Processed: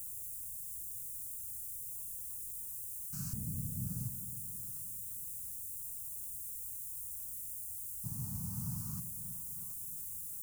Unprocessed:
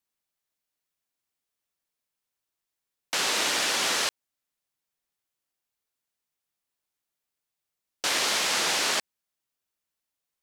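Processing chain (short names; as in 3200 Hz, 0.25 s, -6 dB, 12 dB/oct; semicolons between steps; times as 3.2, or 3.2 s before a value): LFO low-pass saw up 0.3 Hz 440–1700 Hz; in parallel at -3 dB: limiter -23 dBFS, peak gain reduction 7.5 dB; on the sum: added noise white -57 dBFS; inverse Chebyshev band-stop 330–3700 Hz, stop band 50 dB; bell 590 Hz -4.5 dB 1.9 oct; on a send: split-band echo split 380 Hz, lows 0.315 s, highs 0.738 s, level -11.5 dB; on the sum: gain +15 dB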